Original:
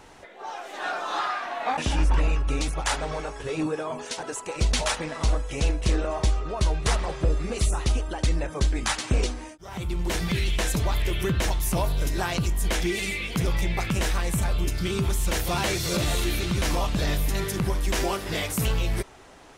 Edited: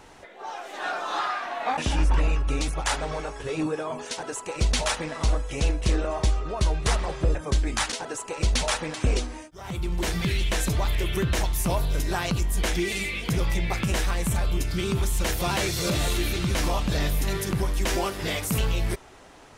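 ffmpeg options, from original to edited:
-filter_complex "[0:a]asplit=4[s0][s1][s2][s3];[s0]atrim=end=7.352[s4];[s1]atrim=start=8.438:end=9.012[s5];[s2]atrim=start=4.098:end=5.122[s6];[s3]atrim=start=9.008[s7];[s4][s5]acrossfade=d=0.004:c1=hsin:c2=hsin[s8];[s8][s6]acrossfade=d=0.004:c1=hsin:c2=hsin[s9];[s9][s7]acrossfade=d=0.004:c1=hsin:c2=hsin"

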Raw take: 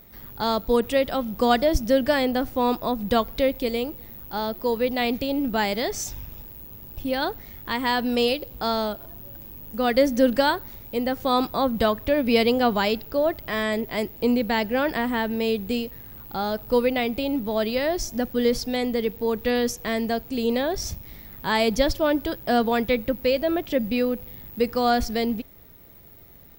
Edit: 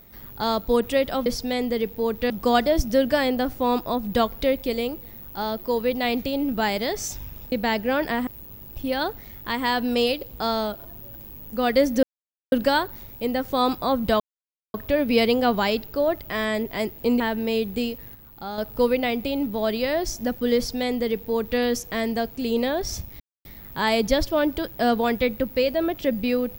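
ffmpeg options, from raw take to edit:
-filter_complex "[0:a]asplit=11[s0][s1][s2][s3][s4][s5][s6][s7][s8][s9][s10];[s0]atrim=end=1.262[s11];[s1]atrim=start=18.488:end=19.532[s12];[s2]atrim=start=1.258:end=6.482[s13];[s3]atrim=start=14.378:end=15.132[s14];[s4]atrim=start=6.478:end=10.24,asetpts=PTS-STARTPTS,afade=t=out:st=3.758:d=0.004:c=hsin,apad=pad_dur=0.49[s15];[s5]atrim=start=10.24:end=11.92,asetpts=PTS-STARTPTS,afade=t=in:d=0.004:c=hsin,afade=t=out:st=1.676:d=0.004:c=hsin,apad=pad_dur=0.54[s16];[s6]atrim=start=11.92:end=14.382,asetpts=PTS-STARTPTS,afade=t=in:d=0.004:c=hsin[s17];[s7]atrim=start=15.128:end=16.082[s18];[s8]atrim=start=16.078:end=16.512,asetpts=PTS-STARTPTS,volume=0.501[s19];[s9]atrim=start=16.508:end=21.13,asetpts=PTS-STARTPTS,afade=t=out:st=4.618:d=0.004:c=hsin,apad=pad_dur=0.25[s20];[s10]atrim=start=21.13,asetpts=PTS-STARTPTS,afade=t=in:d=0.004:c=hsin[s21];[s11][s12]acrossfade=d=0.004:c1=hsin:c2=hsin[s22];[s22][s13]acrossfade=d=0.004:c1=hsin:c2=hsin[s23];[s23][s14]acrossfade=d=0.004:c1=hsin:c2=hsin[s24];[s15][s16][s17]concat=n=3:v=0:a=1[s25];[s24][s25]acrossfade=d=0.004:c1=hsin:c2=hsin[s26];[s26][s18]acrossfade=d=0.004:c1=hsin:c2=hsin[s27];[s27][s19]acrossfade=d=0.004:c1=hsin:c2=hsin[s28];[s20][s21]concat=n=2:v=0:a=1[s29];[s28][s29]acrossfade=d=0.004:c1=hsin:c2=hsin"

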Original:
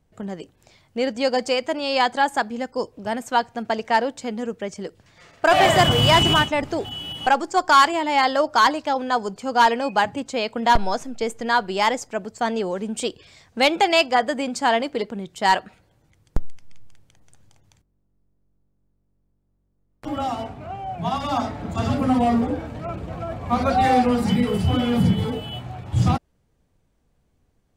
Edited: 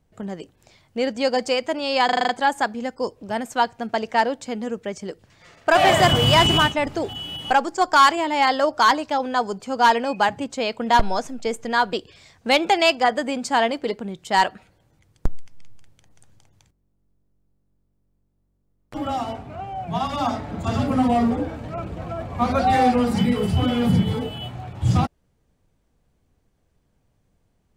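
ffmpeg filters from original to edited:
-filter_complex "[0:a]asplit=8[s0][s1][s2][s3][s4][s5][s6][s7];[s0]atrim=end=2.092[s8];[s1]atrim=start=2.048:end=2.092[s9];[s2]atrim=start=2.048:end=2.092[s10];[s3]atrim=start=2.048:end=2.092[s11];[s4]atrim=start=2.048:end=2.092[s12];[s5]atrim=start=2.048:end=2.092[s13];[s6]atrim=start=2.048:end=11.692[s14];[s7]atrim=start=13.038[s15];[s8][s9]acrossfade=d=0.004:c1=hsin:c2=hsin[s16];[s16][s10]acrossfade=d=0.004:c1=hsin:c2=hsin[s17];[s17][s11]acrossfade=d=0.004:c1=hsin:c2=hsin[s18];[s18][s12]acrossfade=d=0.004:c1=hsin:c2=hsin[s19];[s19][s13]acrossfade=d=0.004:c1=hsin:c2=hsin[s20];[s20][s14]acrossfade=d=0.004:c1=hsin:c2=hsin[s21];[s21][s15]acrossfade=d=0.004:c1=hsin:c2=hsin"

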